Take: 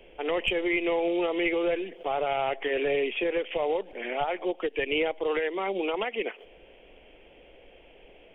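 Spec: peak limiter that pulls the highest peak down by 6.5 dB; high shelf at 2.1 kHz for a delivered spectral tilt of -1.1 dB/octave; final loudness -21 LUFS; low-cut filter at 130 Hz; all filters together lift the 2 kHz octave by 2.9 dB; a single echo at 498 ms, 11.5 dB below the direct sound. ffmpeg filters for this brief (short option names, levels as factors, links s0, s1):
-af "highpass=130,equalizer=f=2000:t=o:g=5.5,highshelf=f=2100:g=-3.5,alimiter=limit=0.1:level=0:latency=1,aecho=1:1:498:0.266,volume=2.51"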